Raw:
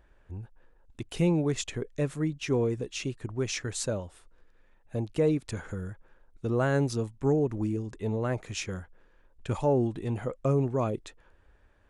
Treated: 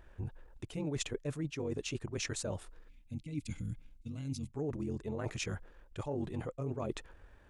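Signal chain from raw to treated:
reversed playback
downward compressor 12 to 1, threshold −37 dBFS, peak gain reduction 17.5 dB
reversed playback
time stretch by overlap-add 0.63×, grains 46 ms
gain on a spectral selection 0:02.88–0:04.51, 320–2,000 Hz −19 dB
level +4.5 dB

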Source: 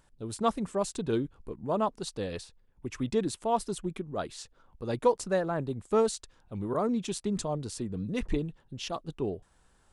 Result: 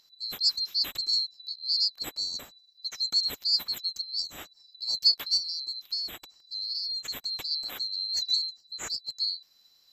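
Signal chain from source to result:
neighbouring bands swapped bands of 4,000 Hz
0:05.37–0:07.51: downward compressor 6 to 1, threshold −32 dBFS, peak gain reduction 11.5 dB
level +1.5 dB

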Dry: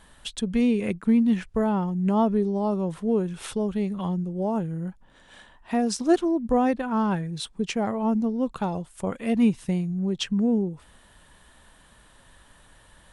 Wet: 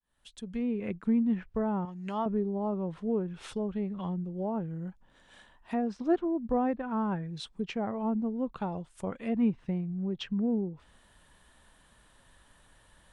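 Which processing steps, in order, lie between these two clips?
fade in at the beginning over 0.97 s
0:01.85–0:02.26: tilt shelving filter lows −9.5 dB, about 920 Hz
treble cut that deepens with the level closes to 1,800 Hz, closed at −21.5 dBFS
level −6.5 dB

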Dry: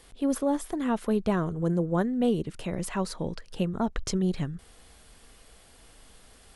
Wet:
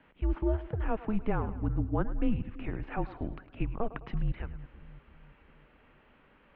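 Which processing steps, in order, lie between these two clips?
single-sideband voice off tune −220 Hz 170–2,800 Hz
echo with a time of its own for lows and highs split 320 Hz, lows 335 ms, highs 105 ms, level −15 dB
level −2 dB

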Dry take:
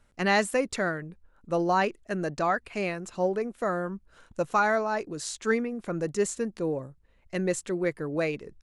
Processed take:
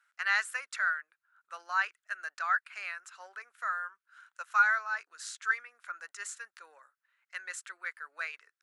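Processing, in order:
four-pole ladder high-pass 1,300 Hz, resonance 65%
level +4 dB

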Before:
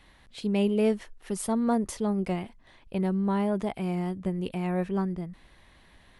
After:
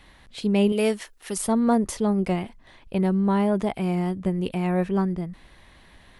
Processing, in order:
0:00.72–0:01.38: spectral tilt +2.5 dB per octave
level +5 dB

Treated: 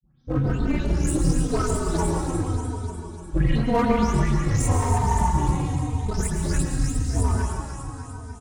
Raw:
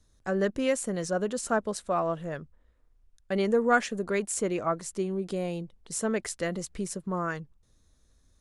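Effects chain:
every frequency bin delayed by itself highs late, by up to 301 ms
granular cloud, spray 24 ms, pitch spread up and down by 0 semitones
healed spectral selection 0:04.80–0:05.26, 950–3,400 Hz before
delay that swaps between a low-pass and a high-pass 149 ms, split 1,100 Hz, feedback 78%, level −5.5 dB
frequency shifter −250 Hz
low-shelf EQ 220 Hz +11.5 dB
mains-hum notches 60/120/180/240 Hz
notch comb filter 200 Hz
asymmetric clip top −28 dBFS
high-shelf EQ 6,100 Hz +4.5 dB
dense smooth reverb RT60 1.4 s, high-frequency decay 0.95×, pre-delay 95 ms, DRR 3.5 dB
barber-pole flanger 3.1 ms −0.91 Hz
level +7 dB

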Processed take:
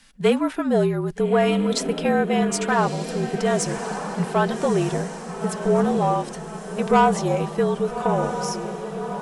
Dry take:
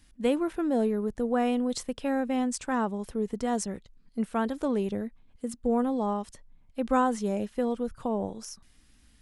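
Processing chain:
on a send: feedback delay with all-pass diffusion 1,247 ms, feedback 54%, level −9 dB
on the sum: flanger 0.97 Hz, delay 3.2 ms, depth 1.8 ms, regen −50%
mid-hump overdrive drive 12 dB, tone 6,100 Hz, clips at −15 dBFS
frequency shifter −46 Hz
level +9 dB

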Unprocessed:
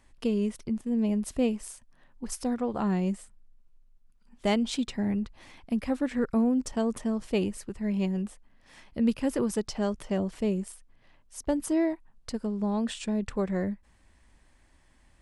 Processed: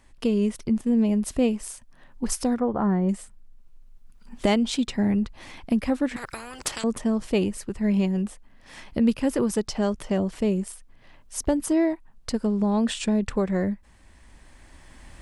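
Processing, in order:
camcorder AGC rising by 7.1 dB per second
0:02.59–0:03.09: Savitzky-Golay smoothing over 41 samples
0:06.16–0:06.84: every bin compressed towards the loudest bin 10 to 1
level +4 dB

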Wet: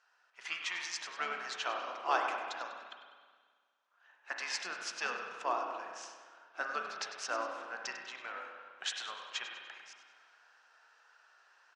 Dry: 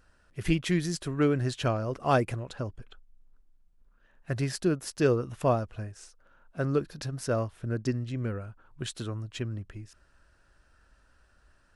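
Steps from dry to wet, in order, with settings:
elliptic band-pass filter 840–6,500 Hz, stop band 70 dB
pitch-shifted copies added −12 semitones −13 dB
echo with shifted repeats 98 ms, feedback 43%, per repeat −34 Hz, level −12 dB
speech leveller within 3 dB 0.5 s
spring reverb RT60 1.7 s, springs 32/50 ms, chirp 55 ms, DRR 3 dB

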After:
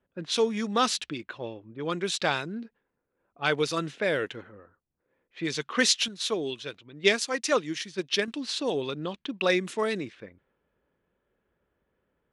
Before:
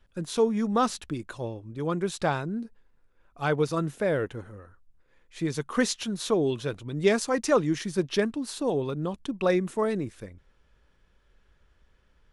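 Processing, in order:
meter weighting curve D
low-pass that shuts in the quiet parts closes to 720 Hz, open at −23 dBFS
low-shelf EQ 69 Hz −9.5 dB
0:06.08–0:08.28: expander for the loud parts 1.5 to 1, over −34 dBFS
level −1 dB

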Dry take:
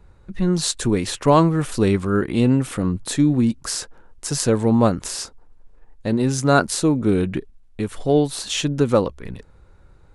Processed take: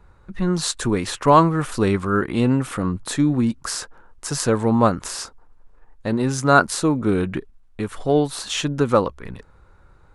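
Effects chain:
parametric band 1,200 Hz +7.5 dB 1.3 octaves
level −2 dB

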